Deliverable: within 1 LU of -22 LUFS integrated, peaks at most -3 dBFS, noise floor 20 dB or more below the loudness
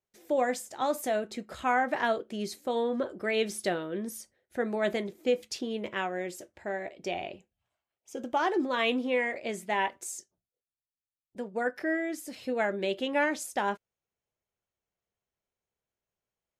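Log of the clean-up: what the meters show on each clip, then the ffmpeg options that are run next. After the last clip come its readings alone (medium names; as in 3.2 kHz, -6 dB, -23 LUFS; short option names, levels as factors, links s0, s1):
loudness -31.0 LUFS; peak level -14.5 dBFS; loudness target -22.0 LUFS
-> -af "volume=2.82"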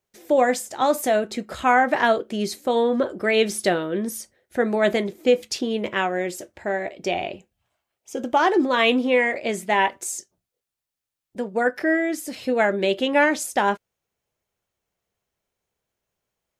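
loudness -22.0 LUFS; peak level -5.5 dBFS; noise floor -85 dBFS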